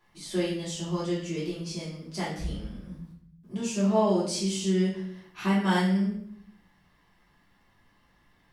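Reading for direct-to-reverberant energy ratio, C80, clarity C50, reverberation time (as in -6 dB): -9.0 dB, 8.0 dB, 3.5 dB, 0.65 s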